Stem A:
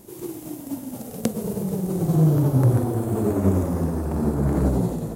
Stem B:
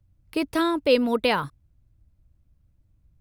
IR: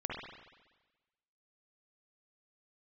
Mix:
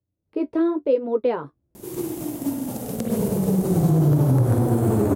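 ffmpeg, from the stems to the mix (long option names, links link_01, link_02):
-filter_complex "[0:a]adelay=1750,volume=1dB,asplit=2[link_01][link_02];[link_02]volume=-4.5dB[link_03];[1:a]dynaudnorm=framelen=100:gausssize=7:maxgain=12.5dB,flanger=delay=9.9:depth=5.1:regen=-37:speed=0.94:shape=sinusoidal,bandpass=frequency=410:width_type=q:width=1.9:csg=0,volume=2dB[link_04];[2:a]atrim=start_sample=2205[link_05];[link_03][link_05]afir=irnorm=-1:irlink=0[link_06];[link_01][link_04][link_06]amix=inputs=3:normalize=0,alimiter=limit=-10.5dB:level=0:latency=1:release=138"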